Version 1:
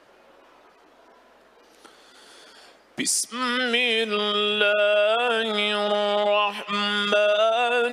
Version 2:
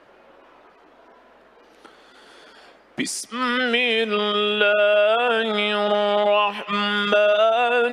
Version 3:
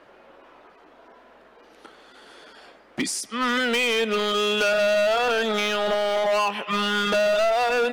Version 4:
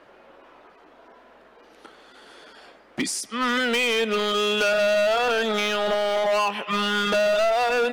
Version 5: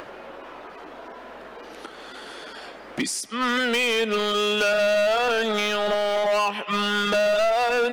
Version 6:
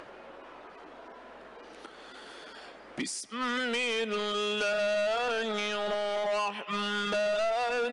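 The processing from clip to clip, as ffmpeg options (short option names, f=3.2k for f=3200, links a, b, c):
-af "bass=f=250:g=1,treble=f=4k:g=-10,volume=3dB"
-af "volume=18.5dB,asoftclip=hard,volume=-18.5dB"
-af anull
-af "acompressor=mode=upward:threshold=-29dB:ratio=2.5"
-af "aresample=22050,aresample=44100,volume=-8dB"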